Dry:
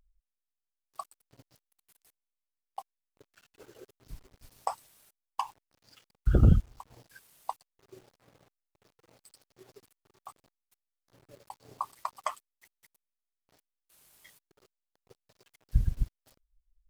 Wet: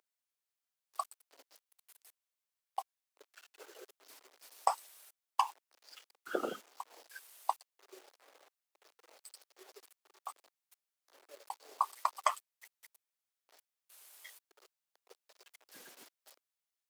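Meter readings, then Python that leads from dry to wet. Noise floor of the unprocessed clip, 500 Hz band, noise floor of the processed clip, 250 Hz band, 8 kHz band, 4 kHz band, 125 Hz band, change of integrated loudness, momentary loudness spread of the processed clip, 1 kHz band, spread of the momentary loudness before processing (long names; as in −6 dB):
below −85 dBFS, −1.0 dB, below −85 dBFS, −15.5 dB, +4.0 dB, +4.0 dB, below −40 dB, −8.0 dB, 23 LU, +3.0 dB, 26 LU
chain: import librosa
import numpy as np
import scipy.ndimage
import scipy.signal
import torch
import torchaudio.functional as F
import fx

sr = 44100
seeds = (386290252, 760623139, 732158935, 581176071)

y = scipy.signal.sosfilt(scipy.signal.bessel(6, 600.0, 'highpass', norm='mag', fs=sr, output='sos'), x)
y = y * librosa.db_to_amplitude(4.0)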